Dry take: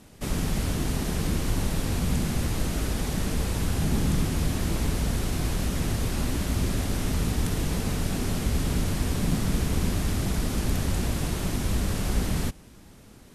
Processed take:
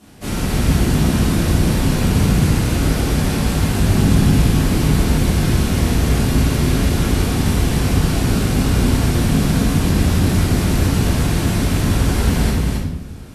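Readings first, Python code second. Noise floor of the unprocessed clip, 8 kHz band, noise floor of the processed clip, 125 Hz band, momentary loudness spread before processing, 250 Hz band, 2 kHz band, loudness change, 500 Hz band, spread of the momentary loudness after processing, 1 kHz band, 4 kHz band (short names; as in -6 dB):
-50 dBFS, +8.0 dB, -24 dBFS, +12.0 dB, 2 LU, +12.0 dB, +10.5 dB, +11.0 dB, +10.5 dB, 3 LU, +10.5 dB, +9.5 dB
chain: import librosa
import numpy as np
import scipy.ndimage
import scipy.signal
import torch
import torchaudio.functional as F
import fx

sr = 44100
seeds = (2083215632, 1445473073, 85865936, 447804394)

y = scipy.signal.sosfilt(scipy.signal.butter(2, 46.0, 'highpass', fs=sr, output='sos'), x)
y = y + 10.0 ** (-3.5 / 20.0) * np.pad(y, (int(270 * sr / 1000.0), 0))[:len(y)]
y = fx.room_shoebox(y, sr, seeds[0], volume_m3=270.0, walls='mixed', distance_m=3.2)
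y = y * 10.0 ** (-1.0 / 20.0)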